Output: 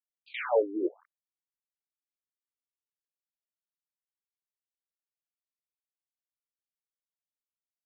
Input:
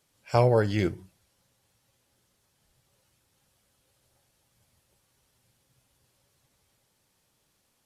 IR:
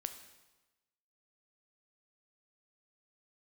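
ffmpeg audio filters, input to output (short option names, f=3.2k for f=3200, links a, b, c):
-af "acrusher=bits=5:dc=4:mix=0:aa=0.000001,afftfilt=real='re*between(b*sr/1024,310*pow(3500/310,0.5+0.5*sin(2*PI*1*pts/sr))/1.41,310*pow(3500/310,0.5+0.5*sin(2*PI*1*pts/sr))*1.41)':imag='im*between(b*sr/1024,310*pow(3500/310,0.5+0.5*sin(2*PI*1*pts/sr))/1.41,310*pow(3500/310,0.5+0.5*sin(2*PI*1*pts/sr))*1.41)':win_size=1024:overlap=0.75"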